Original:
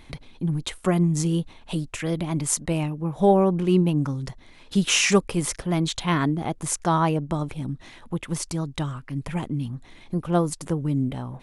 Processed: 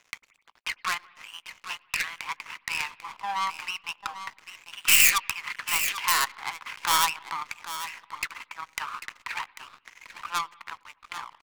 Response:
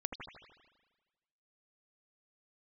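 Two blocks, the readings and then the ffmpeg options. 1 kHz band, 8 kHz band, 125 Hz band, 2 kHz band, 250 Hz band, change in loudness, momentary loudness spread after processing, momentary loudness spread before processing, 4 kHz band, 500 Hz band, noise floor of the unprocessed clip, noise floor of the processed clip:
−1.0 dB, 0.0 dB, −32.5 dB, +5.0 dB, −31.5 dB, −2.0 dB, 19 LU, 12 LU, +1.5 dB, −26.0 dB, −49 dBFS, −66 dBFS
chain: -filter_complex "[0:a]asuperpass=centerf=1600:order=12:qfactor=0.85,aeval=exprs='(tanh(39.8*val(0)+0.55)-tanh(0.55))/39.8':channel_layout=same,aemphasis=mode=production:type=riaa,aecho=1:1:794:0.335,aeval=exprs='sgn(val(0))*max(abs(val(0))-0.002,0)':channel_layout=same,asplit=2[link_01][link_02];[1:a]atrim=start_sample=2205,afade=type=out:start_time=0.42:duration=0.01,atrim=end_sample=18963,adelay=18[link_03];[link_02][link_03]afir=irnorm=-1:irlink=0,volume=-21.5dB[link_04];[link_01][link_04]amix=inputs=2:normalize=0,aeval=exprs='0.237*(cos(1*acos(clip(val(0)/0.237,-1,1)))-cos(1*PI/2))+0.0211*(cos(3*acos(clip(val(0)/0.237,-1,1)))-cos(3*PI/2))+0.0119*(cos(5*acos(clip(val(0)/0.237,-1,1)))-cos(5*PI/2))+0.0133*(cos(6*acos(clip(val(0)/0.237,-1,1)))-cos(6*PI/2))+0.0133*(cos(7*acos(clip(val(0)/0.237,-1,1)))-cos(7*PI/2))':channel_layout=same,alimiter=level_in=15.5dB:limit=-1dB:release=50:level=0:latency=1,volume=-1dB"

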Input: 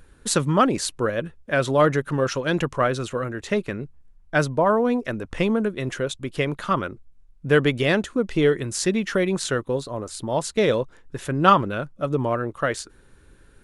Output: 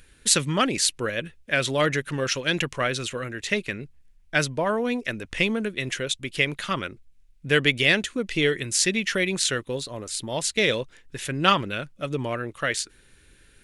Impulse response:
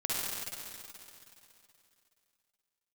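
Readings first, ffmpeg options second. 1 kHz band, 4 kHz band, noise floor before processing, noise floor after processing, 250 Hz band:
−5.5 dB, +6.5 dB, −53 dBFS, −57 dBFS, −4.5 dB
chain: -af "highshelf=frequency=1600:width_type=q:width=1.5:gain=9.5,volume=-4.5dB"

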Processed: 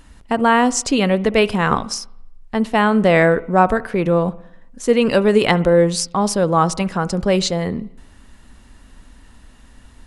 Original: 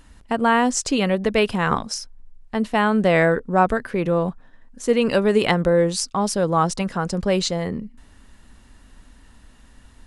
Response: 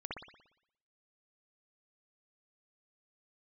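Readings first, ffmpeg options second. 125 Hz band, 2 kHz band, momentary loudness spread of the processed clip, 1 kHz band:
+3.5 dB, +3.0 dB, 10 LU, +3.5 dB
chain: -filter_complex "[0:a]asplit=2[link_01][link_02];[link_02]asuperstop=centerf=1700:order=4:qfactor=4.5[link_03];[1:a]atrim=start_sample=2205,lowpass=3500[link_04];[link_03][link_04]afir=irnorm=-1:irlink=0,volume=-16.5dB[link_05];[link_01][link_05]amix=inputs=2:normalize=0,volume=3dB"

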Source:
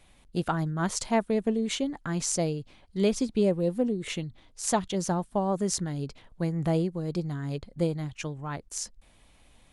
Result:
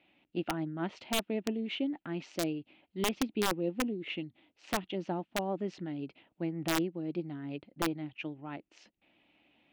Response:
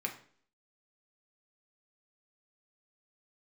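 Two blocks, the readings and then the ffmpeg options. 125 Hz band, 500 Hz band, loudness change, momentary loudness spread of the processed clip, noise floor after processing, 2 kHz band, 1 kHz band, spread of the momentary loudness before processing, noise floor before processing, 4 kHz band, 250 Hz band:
−11.5 dB, −7.5 dB, −6.0 dB, 10 LU, −81 dBFS, −0.5 dB, −5.5 dB, 10 LU, −59 dBFS, −1.5 dB, −5.5 dB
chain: -af "highpass=230,equalizer=frequency=310:width_type=q:width=4:gain=8,equalizer=frequency=470:width_type=q:width=4:gain=-6,equalizer=frequency=1100:width_type=q:width=4:gain=-9,equalizer=frequency=1600:width_type=q:width=4:gain=-5,equalizer=frequency=2700:width_type=q:width=4:gain=7,lowpass=frequency=3100:width=0.5412,lowpass=frequency=3100:width=1.3066,aeval=exprs='(mod(7.5*val(0)+1,2)-1)/7.5':channel_layout=same,volume=-4.5dB"

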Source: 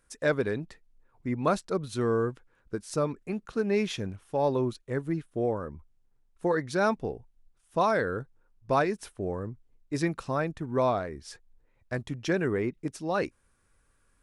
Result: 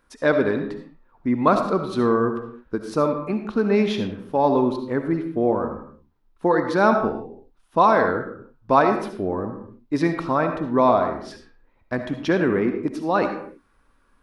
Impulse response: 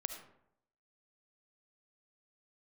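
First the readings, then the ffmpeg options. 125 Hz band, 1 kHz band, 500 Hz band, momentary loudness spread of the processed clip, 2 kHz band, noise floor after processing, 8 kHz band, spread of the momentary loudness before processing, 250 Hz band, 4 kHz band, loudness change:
+3.5 dB, +10.5 dB, +7.5 dB, 13 LU, +6.5 dB, −63 dBFS, can't be measured, 11 LU, +9.5 dB, +5.0 dB, +8.0 dB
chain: -filter_complex "[0:a]equalizer=frequency=125:width_type=o:width=1:gain=-4,equalizer=frequency=250:width_type=o:width=1:gain=8,equalizer=frequency=1000:width_type=o:width=1:gain=8,equalizer=frequency=4000:width_type=o:width=1:gain=4,equalizer=frequency=8000:width_type=o:width=1:gain=-11[link_01];[1:a]atrim=start_sample=2205,afade=type=out:start_time=0.39:duration=0.01,atrim=end_sample=17640[link_02];[link_01][link_02]afir=irnorm=-1:irlink=0,volume=4.5dB"

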